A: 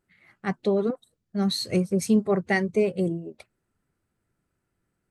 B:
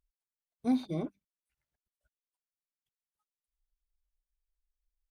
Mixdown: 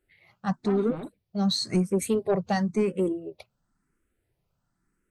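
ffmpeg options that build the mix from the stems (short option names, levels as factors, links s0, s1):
-filter_complex "[0:a]asplit=2[s0][s1];[s1]afreqshift=0.96[s2];[s0][s2]amix=inputs=2:normalize=1,volume=1.41[s3];[1:a]lowpass=f=3000:w=0.5412,lowpass=f=3000:w=1.3066,aeval=exprs='0.119*sin(PI/2*3.98*val(0)/0.119)':c=same,volume=0.2[s4];[s3][s4]amix=inputs=2:normalize=0,asoftclip=type=tanh:threshold=0.188"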